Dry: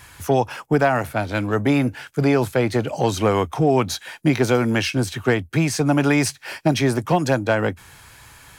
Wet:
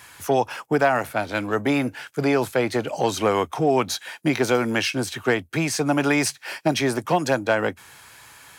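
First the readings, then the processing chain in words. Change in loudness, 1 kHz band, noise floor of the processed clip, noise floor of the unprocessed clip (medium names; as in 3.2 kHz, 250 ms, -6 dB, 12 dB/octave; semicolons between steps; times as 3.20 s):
-2.5 dB, -0.5 dB, -51 dBFS, -48 dBFS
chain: high-pass 310 Hz 6 dB/octave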